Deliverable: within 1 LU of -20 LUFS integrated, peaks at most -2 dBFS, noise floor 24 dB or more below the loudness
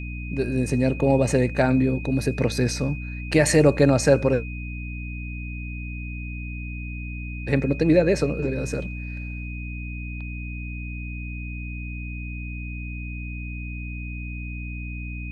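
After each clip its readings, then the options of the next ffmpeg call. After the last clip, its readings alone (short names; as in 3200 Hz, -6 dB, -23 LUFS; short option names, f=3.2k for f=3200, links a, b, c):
hum 60 Hz; harmonics up to 300 Hz; hum level -30 dBFS; steady tone 2500 Hz; tone level -38 dBFS; loudness -25.5 LUFS; peak -4.0 dBFS; loudness target -20.0 LUFS
-> -af "bandreject=f=60:t=h:w=4,bandreject=f=120:t=h:w=4,bandreject=f=180:t=h:w=4,bandreject=f=240:t=h:w=4,bandreject=f=300:t=h:w=4"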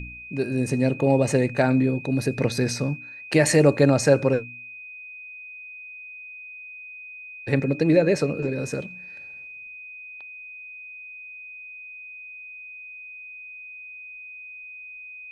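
hum none; steady tone 2500 Hz; tone level -38 dBFS
-> -af "bandreject=f=2.5k:w=30"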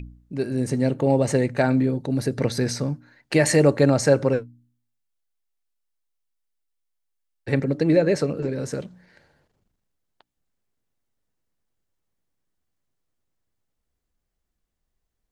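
steady tone none; loudness -22.0 LUFS; peak -4.5 dBFS; loudness target -20.0 LUFS
-> -af "volume=2dB"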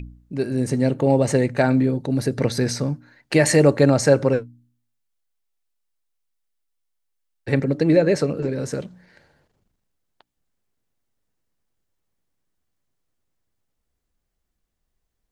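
loudness -20.0 LUFS; peak -2.5 dBFS; noise floor -77 dBFS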